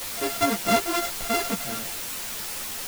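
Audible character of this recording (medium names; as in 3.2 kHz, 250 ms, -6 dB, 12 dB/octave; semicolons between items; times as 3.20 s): a buzz of ramps at a fixed pitch in blocks of 64 samples; tremolo saw up 11 Hz, depth 40%; a quantiser's noise floor 6-bit, dither triangular; a shimmering, thickened sound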